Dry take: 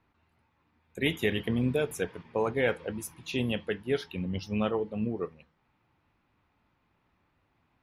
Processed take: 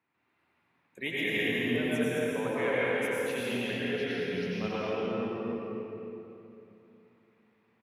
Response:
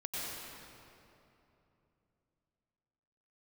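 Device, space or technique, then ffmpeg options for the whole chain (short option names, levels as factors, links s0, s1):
stadium PA: -filter_complex "[0:a]highpass=170,equalizer=f=2100:t=o:w=0.85:g=6,aecho=1:1:218.7|274.1:0.562|0.501[s0];[1:a]atrim=start_sample=2205[s1];[s0][s1]afir=irnorm=-1:irlink=0,volume=0.531"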